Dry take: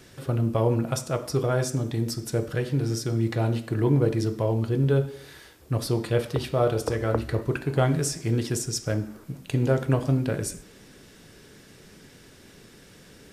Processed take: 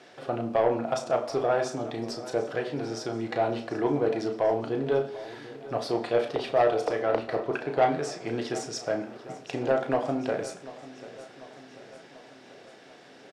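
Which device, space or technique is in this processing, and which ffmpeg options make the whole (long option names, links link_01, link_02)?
intercom: -filter_complex "[0:a]asettb=1/sr,asplit=3[link_01][link_02][link_03];[link_01]atrim=end=7.024[link_04];[link_02]atrim=start=7.02:end=8.27,asetpts=PTS-STARTPTS,afade=type=in:duration=0.004:curve=qsin,afade=type=out:start_time=1.246:duration=0.004:curve=qsin,highshelf=frequency=6000:gain=-6[link_05];[link_03]atrim=start=8.266[link_06];[link_04][link_05]acrossfade=duration=0.004:curve1=hsin:curve2=qsin[link_07];[link_07][link_06]acrossfade=duration=0.004:curve1=qsin:curve2=hsin,highpass=320,lowpass=4400,equalizer=frequency=720:width_type=o:width=0.48:gain=10.5,asoftclip=type=tanh:threshold=-15dB,asplit=2[link_08][link_09];[link_09]adelay=34,volume=-8dB[link_10];[link_08][link_10]amix=inputs=2:normalize=0,aecho=1:1:741|1482|2223|2964|3705|4446:0.141|0.0833|0.0492|0.029|0.0171|0.0101"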